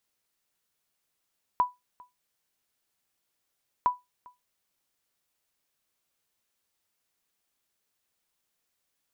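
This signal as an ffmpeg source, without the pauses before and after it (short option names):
-f lavfi -i "aevalsrc='0.178*(sin(2*PI*989*mod(t,2.26))*exp(-6.91*mod(t,2.26)/0.19)+0.0473*sin(2*PI*989*max(mod(t,2.26)-0.4,0))*exp(-6.91*max(mod(t,2.26)-0.4,0)/0.19))':d=4.52:s=44100"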